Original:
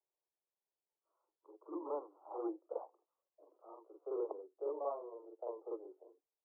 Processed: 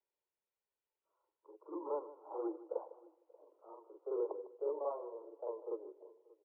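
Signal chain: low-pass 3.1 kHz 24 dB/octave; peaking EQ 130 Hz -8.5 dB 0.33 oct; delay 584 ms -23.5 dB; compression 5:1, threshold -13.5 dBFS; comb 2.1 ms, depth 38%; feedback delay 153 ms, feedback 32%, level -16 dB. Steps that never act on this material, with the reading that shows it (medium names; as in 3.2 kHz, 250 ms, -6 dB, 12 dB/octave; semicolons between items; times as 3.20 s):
low-pass 3.1 kHz: input has nothing above 1.3 kHz; peaking EQ 130 Hz: input has nothing below 270 Hz; compression, threshold -13.5 dBFS: peak at its input -27.0 dBFS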